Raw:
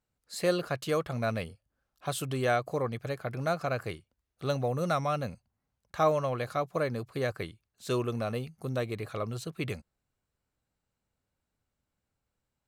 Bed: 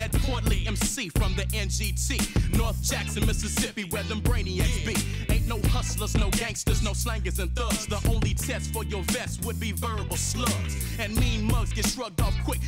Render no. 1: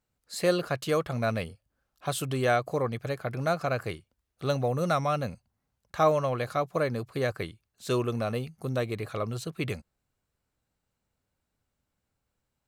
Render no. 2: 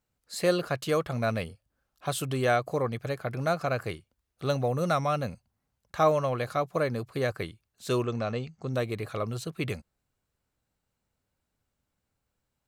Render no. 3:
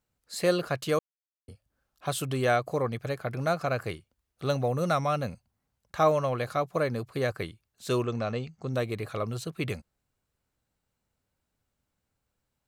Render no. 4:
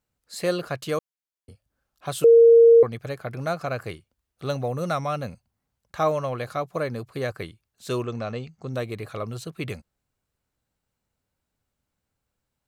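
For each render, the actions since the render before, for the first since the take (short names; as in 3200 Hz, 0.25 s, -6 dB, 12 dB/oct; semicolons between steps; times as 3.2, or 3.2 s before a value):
gain +2.5 dB
8.04–8.73 Chebyshev low-pass 8000 Hz, order 8
0.99–1.48 mute
2.24–2.83 bleep 463 Hz -9 dBFS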